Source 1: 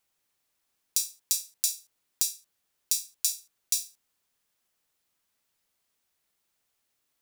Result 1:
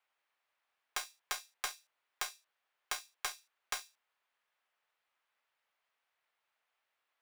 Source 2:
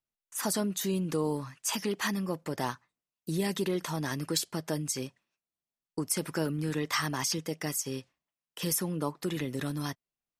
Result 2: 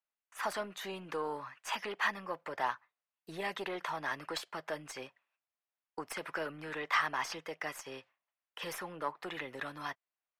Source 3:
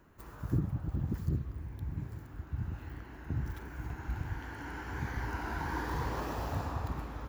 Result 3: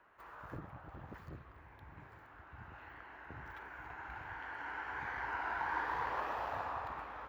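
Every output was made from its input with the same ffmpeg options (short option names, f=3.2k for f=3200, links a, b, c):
-filter_complex "[0:a]aeval=exprs='0.631*(cos(1*acos(clip(val(0)/0.631,-1,1)))-cos(1*PI/2))+0.0708*(cos(6*acos(clip(val(0)/0.631,-1,1)))-cos(6*PI/2))':c=same,acrossover=split=560 3000:gain=0.0794 1 0.0891[a][b][c];[a][b][c]amix=inputs=3:normalize=0,volume=3dB"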